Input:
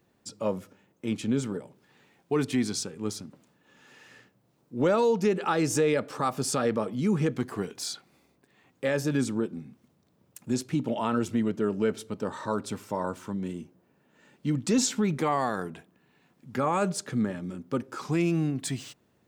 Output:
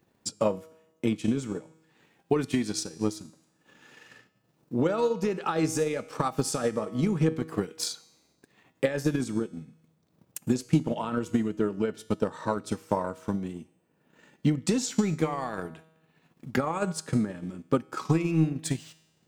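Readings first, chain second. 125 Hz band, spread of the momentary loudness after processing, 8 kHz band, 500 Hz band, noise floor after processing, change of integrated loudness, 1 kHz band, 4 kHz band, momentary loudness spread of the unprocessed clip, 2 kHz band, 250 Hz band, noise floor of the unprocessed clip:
+2.0 dB, 11 LU, -1.5 dB, -1.0 dB, -70 dBFS, -0.5 dB, -2.0 dB, -1.0 dB, 12 LU, -2.0 dB, +0.5 dB, -68 dBFS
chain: peak limiter -20.5 dBFS, peak gain reduction 6 dB; feedback comb 160 Hz, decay 0.95 s, harmonics all, mix 70%; transient shaper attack +10 dB, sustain -5 dB; trim +8.5 dB

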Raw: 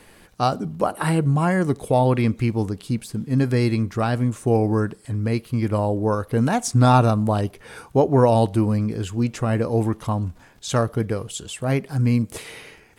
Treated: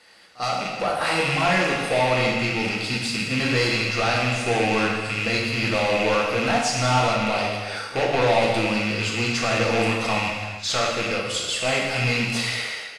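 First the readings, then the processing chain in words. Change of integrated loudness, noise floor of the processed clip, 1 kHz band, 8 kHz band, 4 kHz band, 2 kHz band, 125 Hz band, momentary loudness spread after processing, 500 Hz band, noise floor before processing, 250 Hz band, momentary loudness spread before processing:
-0.5 dB, -35 dBFS, +0.5 dB, +4.0 dB, +12.0 dB, +11.5 dB, -8.0 dB, 5 LU, -0.5 dB, -51 dBFS, -5.5 dB, 10 LU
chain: rattle on loud lows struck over -27 dBFS, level -21 dBFS; high-pass 1.1 kHz 6 dB/octave; peaking EQ 4.7 kHz +9 dB 0.47 oct; comb 1.5 ms, depth 32%; level rider gain up to 11.5 dB; saturation -17 dBFS, distortion -8 dB; distance through air 66 m; reverse echo 46 ms -20 dB; gated-style reverb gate 490 ms falling, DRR -2.5 dB; trim -2 dB

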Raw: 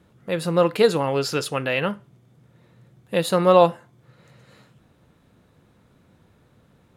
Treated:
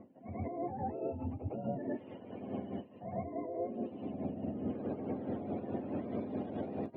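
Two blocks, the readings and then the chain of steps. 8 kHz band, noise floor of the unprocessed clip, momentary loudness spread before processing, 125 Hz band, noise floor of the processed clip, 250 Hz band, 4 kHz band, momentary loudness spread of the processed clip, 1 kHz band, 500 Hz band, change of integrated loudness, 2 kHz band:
under -40 dB, -59 dBFS, 12 LU, -12.0 dB, -56 dBFS, -8.0 dB, under -30 dB, 4 LU, -17.0 dB, -18.0 dB, -19.0 dB, -27.0 dB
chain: spectrum inverted on a logarithmic axis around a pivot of 600 Hz; recorder AGC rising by 11 dB/s; level-controlled noise filter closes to 2.1 kHz, open at -16.5 dBFS; FFT filter 140 Hz 0 dB, 230 Hz +14 dB, 570 Hz +14 dB, 1.4 kHz -9 dB; reverse; compression 6:1, threshold -36 dBFS, peak gain reduction 32 dB; reverse; peak limiter -36 dBFS, peak gain reduction 13 dB; tremolo 4.7 Hz, depth 97%; distance through air 350 m; reverse echo 108 ms -6 dB; trim +9 dB

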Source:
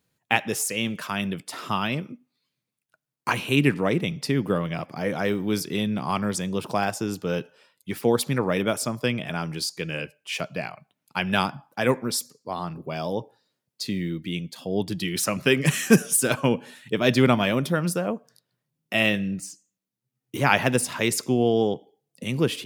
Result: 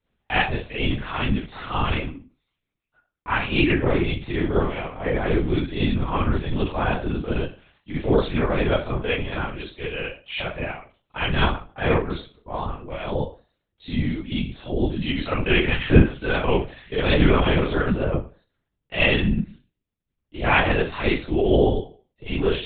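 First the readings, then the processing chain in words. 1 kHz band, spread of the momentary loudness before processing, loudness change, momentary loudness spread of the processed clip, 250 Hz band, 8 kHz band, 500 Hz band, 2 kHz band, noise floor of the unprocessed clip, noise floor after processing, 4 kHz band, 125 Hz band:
+1.5 dB, 12 LU, +1.5 dB, 13 LU, +1.0 dB, under -40 dB, +2.0 dB, +2.0 dB, -84 dBFS, -80 dBFS, +0.5 dB, +4.0 dB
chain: Schroeder reverb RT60 0.31 s, combs from 31 ms, DRR -8 dB; LPC vocoder at 8 kHz whisper; trim -6 dB

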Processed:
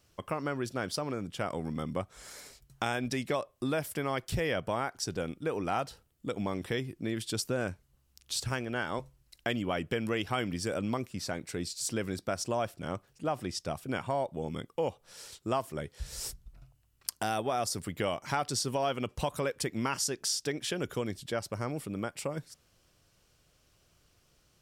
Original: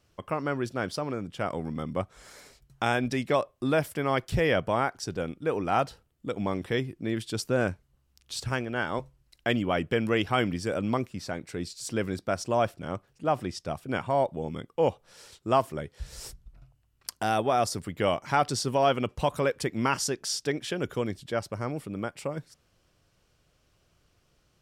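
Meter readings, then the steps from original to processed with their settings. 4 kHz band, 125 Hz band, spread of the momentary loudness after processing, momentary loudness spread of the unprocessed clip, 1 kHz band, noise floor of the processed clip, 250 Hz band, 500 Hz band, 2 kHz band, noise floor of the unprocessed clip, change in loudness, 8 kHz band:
-1.5 dB, -4.5 dB, 8 LU, 11 LU, -6.0 dB, -69 dBFS, -4.5 dB, -5.5 dB, -5.0 dB, -69 dBFS, -5.0 dB, +1.5 dB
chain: treble shelf 4.5 kHz +7.5 dB; compression 2.5:1, threshold -29 dBFS, peak gain reduction 8 dB; trim -1 dB

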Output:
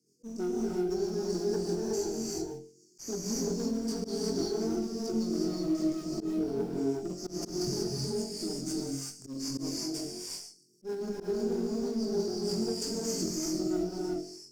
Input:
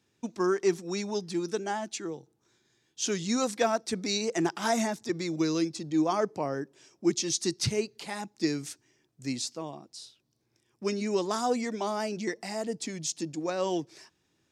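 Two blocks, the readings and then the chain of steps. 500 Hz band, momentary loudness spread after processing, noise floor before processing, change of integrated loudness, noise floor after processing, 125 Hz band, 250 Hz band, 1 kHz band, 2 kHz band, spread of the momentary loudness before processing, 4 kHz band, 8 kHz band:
-1.5 dB, 7 LU, -74 dBFS, -2.5 dB, -61 dBFS, -0.5 dB, 0.0 dB, -12.5 dB, -15.0 dB, 12 LU, -2.5 dB, -2.5 dB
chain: low-pass that closes with the level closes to 2.2 kHz, closed at -25 dBFS; FFT band-reject 480–4400 Hz; high-pass 150 Hz 24 dB/octave; treble shelf 4.7 kHz +6.5 dB; peak limiter -24 dBFS, peak gain reduction 8.5 dB; on a send: flutter echo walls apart 3.8 m, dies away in 0.48 s; on the sum: compression 5:1, threshold -32 dBFS, peak gain reduction 12 dB; Chebyshev shaper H 4 -29 dB, 8 -24 dB, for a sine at -22 dBFS; in parallel at -4 dB: short-mantissa float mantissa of 2-bit; on the sum: rotary cabinet horn 6.3 Hz; gated-style reverb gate 400 ms rising, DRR -4 dB; slow attack 100 ms; trim -4 dB

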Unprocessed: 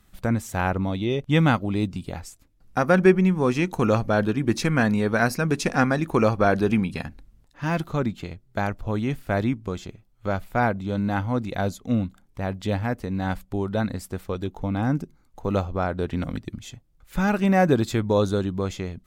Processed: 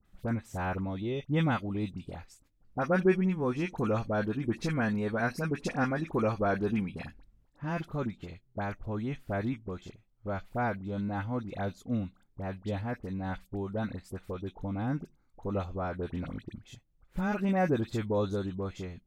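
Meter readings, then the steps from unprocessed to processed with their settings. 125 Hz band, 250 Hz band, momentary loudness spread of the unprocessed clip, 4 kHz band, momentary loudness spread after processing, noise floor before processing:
-8.5 dB, -8.5 dB, 13 LU, -11.5 dB, 13 LU, -59 dBFS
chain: treble shelf 4.6 kHz -8 dB; phase dispersion highs, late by 52 ms, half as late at 1.6 kHz; trim -8.5 dB

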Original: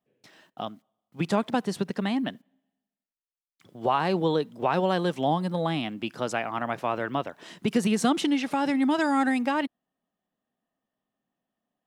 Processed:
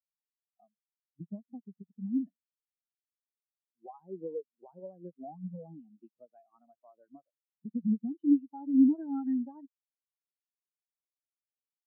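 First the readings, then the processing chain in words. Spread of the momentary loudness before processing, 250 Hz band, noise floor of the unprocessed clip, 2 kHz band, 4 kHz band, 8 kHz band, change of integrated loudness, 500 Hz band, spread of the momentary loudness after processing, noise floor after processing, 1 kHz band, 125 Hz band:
9 LU, -4.0 dB, under -85 dBFS, under -40 dB, under -40 dB, under -35 dB, -4.5 dB, -18.0 dB, 23 LU, under -85 dBFS, -24.0 dB, -14.0 dB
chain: compression 3:1, threshold -28 dBFS, peak gain reduction 8 dB; spectral contrast expander 4:1; trim +2 dB

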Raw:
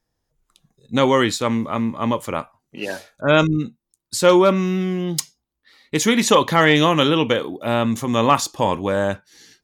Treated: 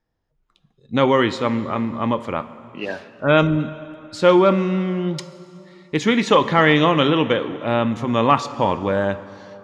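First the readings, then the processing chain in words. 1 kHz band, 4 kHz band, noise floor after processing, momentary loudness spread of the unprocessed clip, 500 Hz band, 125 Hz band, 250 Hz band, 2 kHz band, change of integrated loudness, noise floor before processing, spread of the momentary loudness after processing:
0.0 dB, -3.0 dB, -68 dBFS, 14 LU, 0.0 dB, +0.5 dB, 0.0 dB, -0.5 dB, 0.0 dB, -78 dBFS, 15 LU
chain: low-pass 3.3 kHz 12 dB/octave; plate-style reverb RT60 2.9 s, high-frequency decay 0.75×, DRR 13.5 dB

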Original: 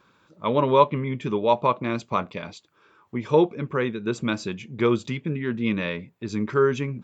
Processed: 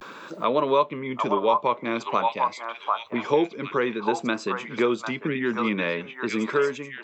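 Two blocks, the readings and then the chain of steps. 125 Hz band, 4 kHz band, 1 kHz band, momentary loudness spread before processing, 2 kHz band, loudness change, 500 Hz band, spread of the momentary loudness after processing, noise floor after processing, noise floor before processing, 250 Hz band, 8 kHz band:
-10.0 dB, +1.5 dB, +1.5 dB, 13 LU, +3.0 dB, -1.0 dB, -1.5 dB, 7 LU, -44 dBFS, -62 dBFS, -2.0 dB, no reading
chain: fade out at the end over 0.54 s; high-pass 270 Hz 12 dB/octave; vibrato 0.5 Hz 61 cents; repeats whose band climbs or falls 748 ms, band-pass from 990 Hz, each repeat 1.4 oct, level -1 dB; three bands compressed up and down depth 70%

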